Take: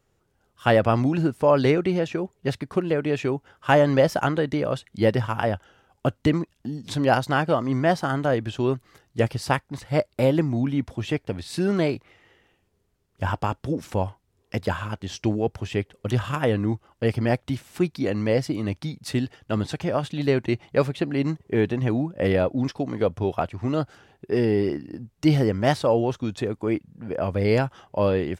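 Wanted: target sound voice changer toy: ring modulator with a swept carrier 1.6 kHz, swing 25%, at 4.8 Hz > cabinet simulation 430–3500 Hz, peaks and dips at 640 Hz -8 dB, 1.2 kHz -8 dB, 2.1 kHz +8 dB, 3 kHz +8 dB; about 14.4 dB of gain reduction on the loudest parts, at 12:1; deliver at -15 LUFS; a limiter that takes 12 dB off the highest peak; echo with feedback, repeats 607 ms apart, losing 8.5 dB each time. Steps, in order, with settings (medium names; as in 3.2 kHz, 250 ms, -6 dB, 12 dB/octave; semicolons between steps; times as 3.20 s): compression 12:1, threshold -28 dBFS; peak limiter -25 dBFS; feedback delay 607 ms, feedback 38%, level -8.5 dB; ring modulator with a swept carrier 1.6 kHz, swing 25%, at 4.8 Hz; cabinet simulation 430–3500 Hz, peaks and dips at 640 Hz -8 dB, 1.2 kHz -8 dB, 2.1 kHz +8 dB, 3 kHz +8 dB; trim +18 dB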